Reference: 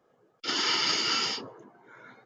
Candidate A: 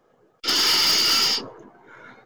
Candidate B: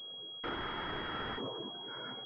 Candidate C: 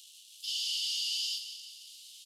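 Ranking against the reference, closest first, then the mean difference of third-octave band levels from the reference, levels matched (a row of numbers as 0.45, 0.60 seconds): A, B, C; 4.0, 11.0, 22.0 decibels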